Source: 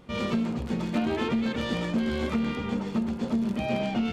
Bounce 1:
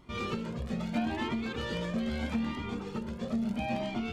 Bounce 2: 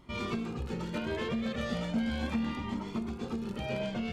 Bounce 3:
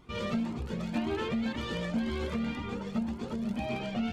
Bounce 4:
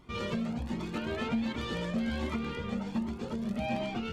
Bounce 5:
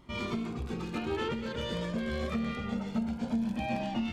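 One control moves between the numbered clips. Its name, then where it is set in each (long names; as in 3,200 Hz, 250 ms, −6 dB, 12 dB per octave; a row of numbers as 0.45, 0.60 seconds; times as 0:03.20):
flanger whose copies keep moving one way, speed: 0.77, 0.36, 1.9, 1.3, 0.23 Hertz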